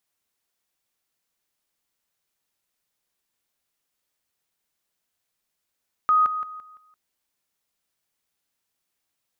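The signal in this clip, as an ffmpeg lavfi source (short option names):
-f lavfi -i "aevalsrc='pow(10,(-15-10*floor(t/0.17))/20)*sin(2*PI*1250*t)':d=0.85:s=44100"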